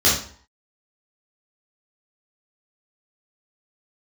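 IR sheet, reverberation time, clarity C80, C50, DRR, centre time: 0.50 s, 9.0 dB, 3.5 dB, -8.0 dB, 40 ms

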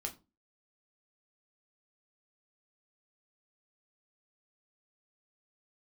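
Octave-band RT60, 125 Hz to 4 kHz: 0.40 s, 0.40 s, 0.35 s, 0.25 s, 0.20 s, 0.20 s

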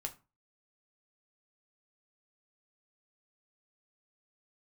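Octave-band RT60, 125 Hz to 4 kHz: 0.40 s, 0.35 s, 0.30 s, 0.30 s, 0.25 s, 0.20 s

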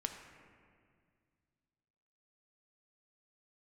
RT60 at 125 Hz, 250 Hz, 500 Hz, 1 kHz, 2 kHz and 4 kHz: 2.9 s, 2.6 s, 2.2 s, 1.9 s, 1.9 s, 1.4 s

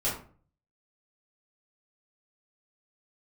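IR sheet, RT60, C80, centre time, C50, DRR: 0.45 s, 10.5 dB, 34 ms, 5.5 dB, -10.0 dB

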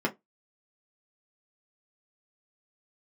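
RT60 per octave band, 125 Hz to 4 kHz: 0.20 s, 0.20 s, 0.20 s, 0.15 s, 0.15 s, 0.10 s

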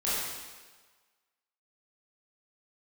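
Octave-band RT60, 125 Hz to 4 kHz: 1.2 s, 1.2 s, 1.4 s, 1.4 s, 1.4 s, 1.3 s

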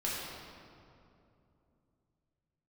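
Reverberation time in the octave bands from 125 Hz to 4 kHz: 4.0 s, 3.6 s, 3.0 s, 2.5 s, 1.9 s, 1.5 s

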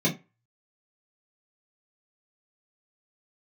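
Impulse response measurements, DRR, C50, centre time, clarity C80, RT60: -6.0 dB, 14.0 dB, 17 ms, 21.0 dB, 0.25 s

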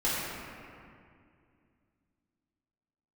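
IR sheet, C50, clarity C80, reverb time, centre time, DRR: -3.0 dB, -1.5 dB, 2.3 s, 157 ms, -10.0 dB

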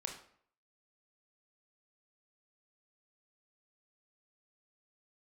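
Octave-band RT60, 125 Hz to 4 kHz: 0.60 s, 0.60 s, 0.60 s, 0.60 s, 0.55 s, 0.45 s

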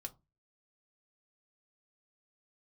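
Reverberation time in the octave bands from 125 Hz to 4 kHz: 0.40 s, 0.35 s, 0.25 s, 0.25 s, 0.15 s, 0.15 s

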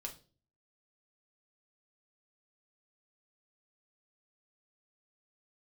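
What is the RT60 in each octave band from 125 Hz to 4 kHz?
0.65 s, 0.55 s, 0.45 s, 0.30 s, 0.30 s, 0.35 s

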